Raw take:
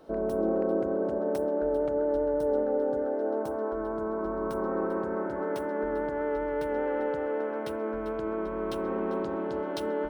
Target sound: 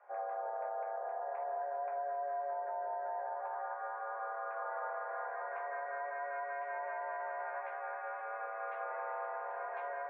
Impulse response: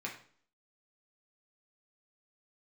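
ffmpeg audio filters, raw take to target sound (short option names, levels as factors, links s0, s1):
-filter_complex "[0:a]highpass=f=530:t=q:w=0.5412,highpass=f=530:t=q:w=1.307,lowpass=f=2100:t=q:w=0.5176,lowpass=f=2100:t=q:w=0.7071,lowpass=f=2100:t=q:w=1.932,afreqshift=120[s0];[1:a]atrim=start_sample=2205,atrim=end_sample=3969[s1];[s0][s1]afir=irnorm=-1:irlink=0,alimiter=level_in=1.78:limit=0.0631:level=0:latency=1:release=78,volume=0.562,volume=0.75"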